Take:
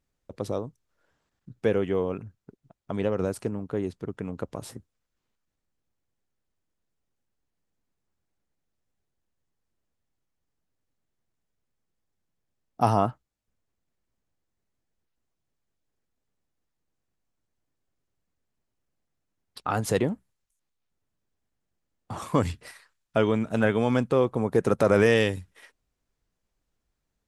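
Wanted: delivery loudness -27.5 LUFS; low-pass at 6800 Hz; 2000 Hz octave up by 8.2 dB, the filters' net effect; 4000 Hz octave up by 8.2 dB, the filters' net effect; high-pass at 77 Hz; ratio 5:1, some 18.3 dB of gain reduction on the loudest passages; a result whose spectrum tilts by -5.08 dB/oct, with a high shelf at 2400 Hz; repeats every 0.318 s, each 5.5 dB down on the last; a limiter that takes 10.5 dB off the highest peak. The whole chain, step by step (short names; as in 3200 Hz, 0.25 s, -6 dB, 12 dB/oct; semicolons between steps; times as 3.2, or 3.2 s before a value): HPF 77 Hz; LPF 6800 Hz; bell 2000 Hz +7.5 dB; high shelf 2400 Hz +3.5 dB; bell 4000 Hz +5 dB; compressor 5:1, threshold -35 dBFS; limiter -27 dBFS; feedback echo 0.318 s, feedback 53%, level -5.5 dB; gain +14 dB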